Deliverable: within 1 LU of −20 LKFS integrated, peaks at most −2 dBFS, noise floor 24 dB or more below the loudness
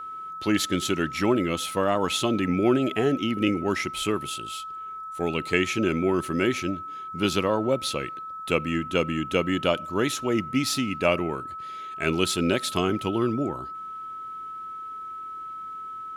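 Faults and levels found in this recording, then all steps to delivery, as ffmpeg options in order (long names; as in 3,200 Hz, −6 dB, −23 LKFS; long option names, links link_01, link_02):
interfering tone 1,300 Hz; level of the tone −34 dBFS; integrated loudness −26.5 LKFS; sample peak −5.5 dBFS; target loudness −20.0 LKFS
→ -af "bandreject=frequency=1300:width=30"
-af "volume=6.5dB,alimiter=limit=-2dB:level=0:latency=1"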